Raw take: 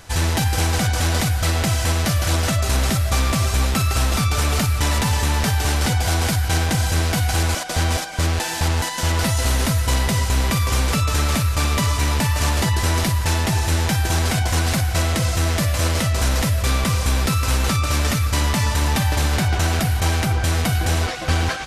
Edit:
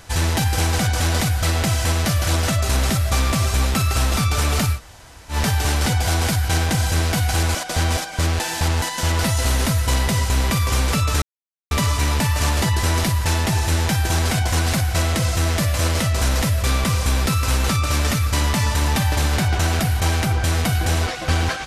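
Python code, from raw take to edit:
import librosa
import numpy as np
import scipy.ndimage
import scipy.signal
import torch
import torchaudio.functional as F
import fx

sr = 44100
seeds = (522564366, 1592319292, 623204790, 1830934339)

y = fx.edit(x, sr, fx.room_tone_fill(start_s=4.76, length_s=0.57, crossfade_s=0.1),
    fx.silence(start_s=11.22, length_s=0.49), tone=tone)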